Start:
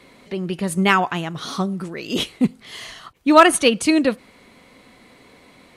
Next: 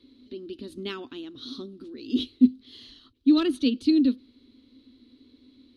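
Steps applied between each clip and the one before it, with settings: FFT filter 110 Hz 0 dB, 170 Hz -26 dB, 250 Hz +11 dB, 730 Hz -24 dB, 1.4 kHz -16 dB, 2.1 kHz -19 dB, 3.9 kHz +3 dB, 7.6 kHz -23 dB, 11 kHz -18 dB; trim -7 dB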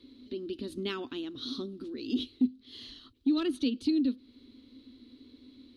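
compression 2:1, threshold -33 dBFS, peak gain reduction 12 dB; trim +1.5 dB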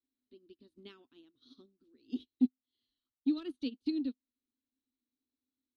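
upward expansion 2.5:1, over -47 dBFS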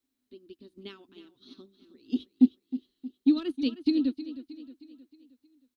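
feedback delay 313 ms, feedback 49%, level -14 dB; trim +8.5 dB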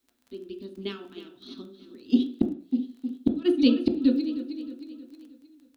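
inverted gate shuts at -16 dBFS, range -35 dB; crackle 21 per s -52 dBFS; on a send at -4 dB: reverberation RT60 0.45 s, pre-delay 3 ms; on the sum: trim +7.5 dB

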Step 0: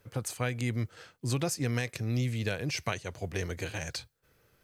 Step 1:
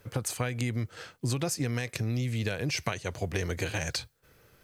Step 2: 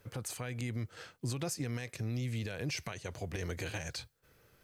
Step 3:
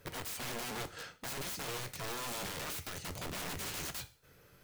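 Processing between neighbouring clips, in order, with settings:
compression, threshold -33 dBFS, peak gain reduction 8 dB; trim +6.5 dB
peak limiter -22 dBFS, peak gain reduction 8.5 dB; trim -5 dB
integer overflow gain 39 dB; two-slope reverb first 0.39 s, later 1.6 s, from -27 dB, DRR 9.5 dB; trim +3 dB

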